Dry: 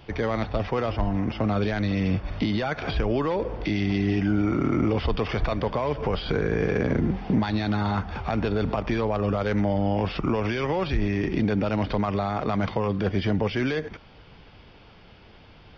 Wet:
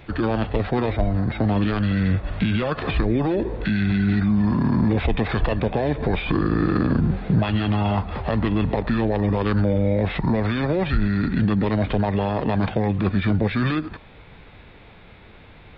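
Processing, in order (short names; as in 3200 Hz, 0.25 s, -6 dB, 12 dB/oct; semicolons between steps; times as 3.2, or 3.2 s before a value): formant shift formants -5 st; bell 4700 Hz +5 dB 0.95 oct; gain +4 dB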